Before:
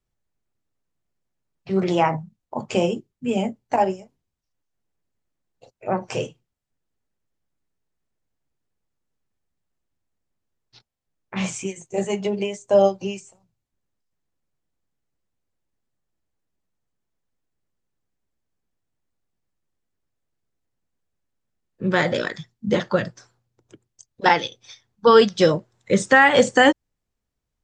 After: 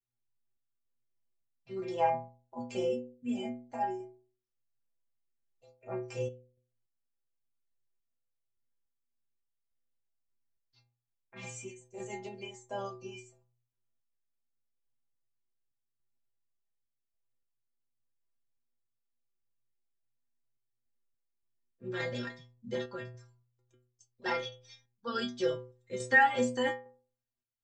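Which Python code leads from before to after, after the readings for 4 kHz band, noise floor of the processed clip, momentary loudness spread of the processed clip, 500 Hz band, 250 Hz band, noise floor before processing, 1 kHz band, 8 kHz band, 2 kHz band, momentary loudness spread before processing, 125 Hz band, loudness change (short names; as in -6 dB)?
-15.5 dB, -84 dBFS, 16 LU, -15.5 dB, -15.0 dB, -80 dBFS, -12.0 dB, -14.0 dB, -11.0 dB, 18 LU, -15.5 dB, -13.5 dB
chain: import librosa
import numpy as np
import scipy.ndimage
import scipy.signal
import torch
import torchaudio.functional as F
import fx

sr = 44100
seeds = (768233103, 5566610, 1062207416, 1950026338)

y = fx.stiff_resonator(x, sr, f0_hz=120.0, decay_s=0.5, stiffness=0.008)
y = fx.tremolo_random(y, sr, seeds[0], hz=3.5, depth_pct=55)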